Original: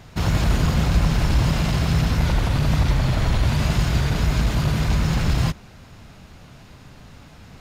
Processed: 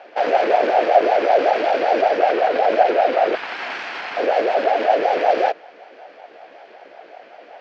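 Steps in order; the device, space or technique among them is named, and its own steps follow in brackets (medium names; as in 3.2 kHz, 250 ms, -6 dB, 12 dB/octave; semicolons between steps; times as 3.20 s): 3.35–4.17 s: high-pass 300 Hz 24 dB/octave; voice changer toy (ring modulator with a swept carrier 540 Hz, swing 30%, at 5.3 Hz; cabinet simulation 470–4100 Hz, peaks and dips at 710 Hz +7 dB, 1.1 kHz -4 dB, 1.6 kHz +5 dB, 2.4 kHz +4 dB, 3.7 kHz -6 dB); trim +4 dB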